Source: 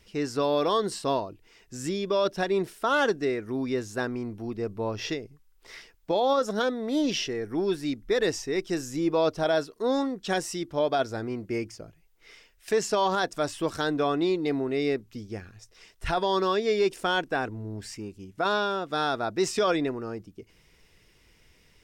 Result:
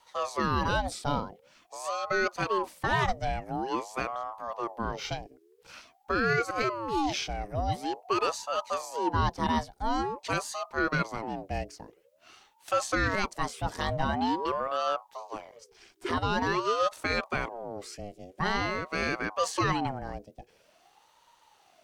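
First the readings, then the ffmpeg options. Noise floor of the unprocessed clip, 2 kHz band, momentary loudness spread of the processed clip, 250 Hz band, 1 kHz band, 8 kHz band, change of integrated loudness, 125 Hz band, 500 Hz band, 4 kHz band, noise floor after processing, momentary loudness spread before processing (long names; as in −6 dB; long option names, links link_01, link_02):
−61 dBFS, +1.0 dB, 12 LU, −5.0 dB, +1.0 dB, −2.5 dB, −2.5 dB, +2.0 dB, −7.0 dB, −3.5 dB, −64 dBFS, 13 LU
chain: -af "afreqshift=-46,aeval=exprs='val(0)*sin(2*PI*650*n/s+650*0.45/0.47*sin(2*PI*0.47*n/s))':channel_layout=same"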